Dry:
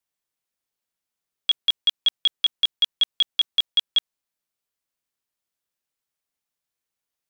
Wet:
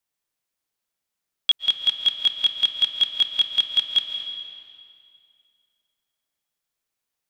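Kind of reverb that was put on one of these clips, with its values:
comb and all-pass reverb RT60 2.4 s, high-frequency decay 0.85×, pre-delay 100 ms, DRR 5.5 dB
level +1.5 dB

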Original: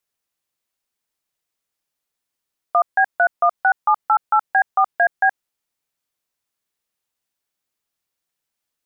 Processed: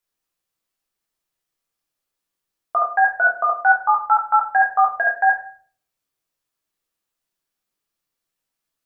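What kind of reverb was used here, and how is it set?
rectangular room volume 54 cubic metres, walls mixed, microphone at 0.64 metres
level −3 dB

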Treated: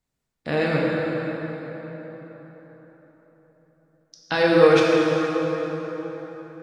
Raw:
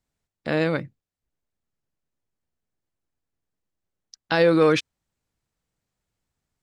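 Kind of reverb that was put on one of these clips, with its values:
dense smooth reverb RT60 4.5 s, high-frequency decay 0.6×, DRR −4.5 dB
level −2 dB

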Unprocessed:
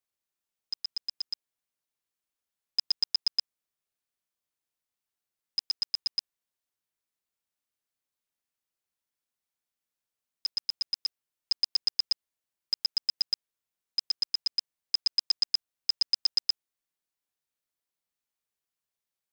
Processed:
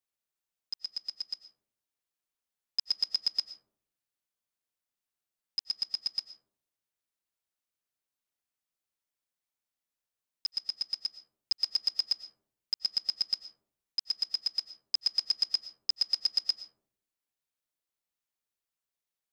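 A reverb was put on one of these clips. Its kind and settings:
comb and all-pass reverb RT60 0.66 s, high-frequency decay 0.3×, pre-delay 70 ms, DRR 11.5 dB
level −2.5 dB

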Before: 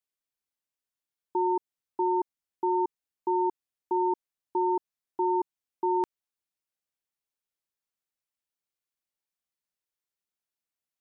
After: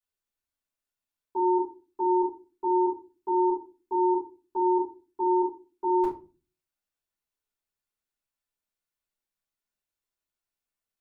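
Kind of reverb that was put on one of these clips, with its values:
rectangular room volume 150 cubic metres, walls furnished, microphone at 5.1 metres
level −9.5 dB

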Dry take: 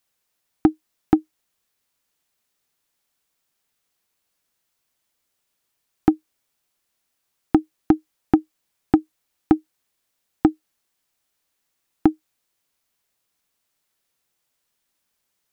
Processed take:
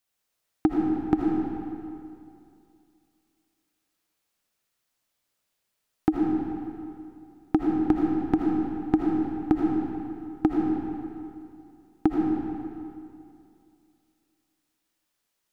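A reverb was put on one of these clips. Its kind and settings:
comb and all-pass reverb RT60 2.5 s, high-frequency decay 0.8×, pre-delay 40 ms, DRR −2 dB
level −6 dB

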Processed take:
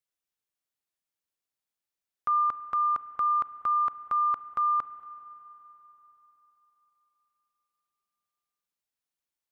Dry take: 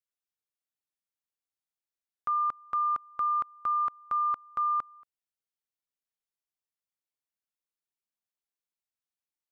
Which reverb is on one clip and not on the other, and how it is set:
spring reverb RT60 3.9 s, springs 31/47 ms, chirp 35 ms, DRR 13.5 dB
level +2.5 dB

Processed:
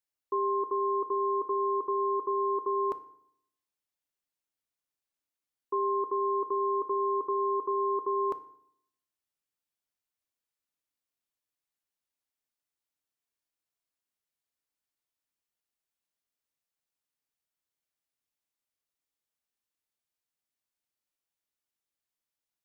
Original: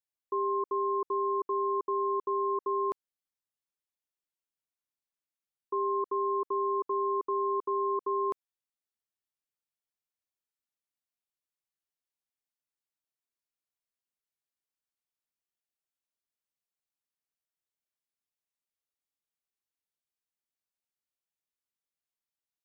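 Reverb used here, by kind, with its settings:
feedback delay network reverb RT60 0.68 s, low-frequency decay 1.25×, high-frequency decay 0.75×, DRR 11.5 dB
level +1.5 dB

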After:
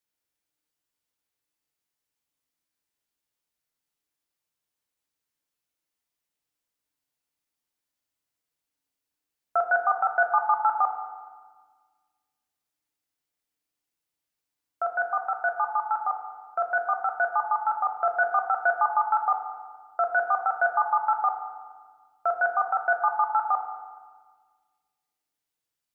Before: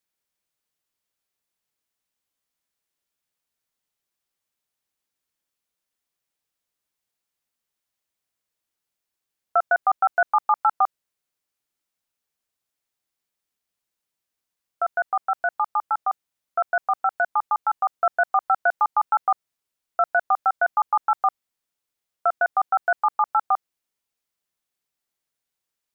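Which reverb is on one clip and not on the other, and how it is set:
feedback delay network reverb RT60 1.5 s, low-frequency decay 1.55×, high-frequency decay 0.8×, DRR 2.5 dB
level −4 dB

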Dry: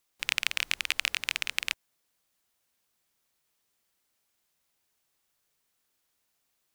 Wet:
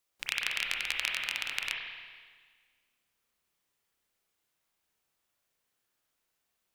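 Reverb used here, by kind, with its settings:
spring reverb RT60 1.6 s, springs 30/46 ms, chirp 70 ms, DRR −1 dB
level −5 dB

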